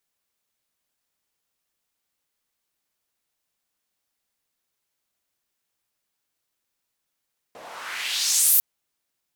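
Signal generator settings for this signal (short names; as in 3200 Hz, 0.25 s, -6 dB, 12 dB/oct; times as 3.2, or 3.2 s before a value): swept filtered noise white, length 1.05 s bandpass, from 510 Hz, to 15000 Hz, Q 2, exponential, gain ramp +17.5 dB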